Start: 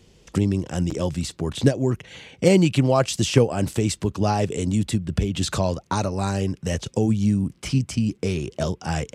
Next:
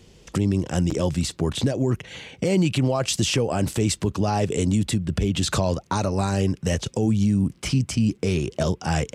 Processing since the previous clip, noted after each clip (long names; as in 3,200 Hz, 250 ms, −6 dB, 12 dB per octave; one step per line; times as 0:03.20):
brickwall limiter −15.5 dBFS, peak gain reduction 11.5 dB
level +3 dB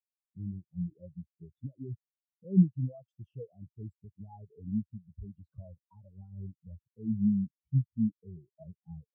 every bin expanded away from the loudest bin 4 to 1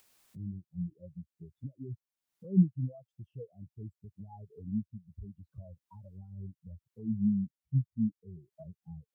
upward compression, threshold −41 dBFS
level −1.5 dB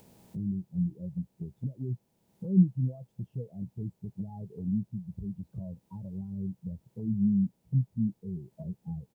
compressor on every frequency bin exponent 0.6
double-tracking delay 16 ms −13.5 dB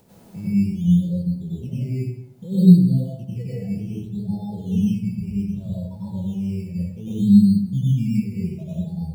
in parallel at −6 dB: sample-and-hold swept by an LFO 14×, swing 60% 0.64 Hz
on the sum: dense smooth reverb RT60 0.83 s, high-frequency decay 0.7×, pre-delay 80 ms, DRR −8.5 dB
level −2 dB